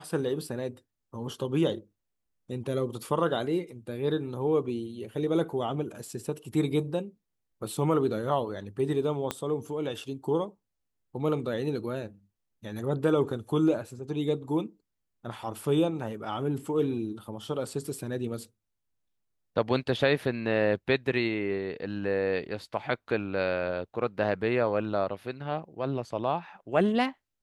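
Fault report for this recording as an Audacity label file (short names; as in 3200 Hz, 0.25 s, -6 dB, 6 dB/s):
9.310000	9.310000	pop -14 dBFS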